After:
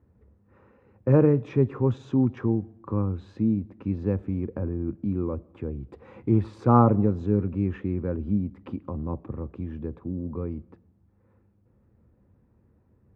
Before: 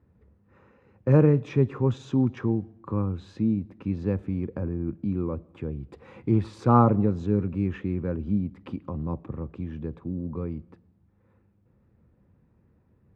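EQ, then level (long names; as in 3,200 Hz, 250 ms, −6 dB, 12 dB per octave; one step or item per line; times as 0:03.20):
parametric band 160 Hz −6.5 dB 0.31 octaves
high-shelf EQ 2,300 Hz −10 dB
+1.5 dB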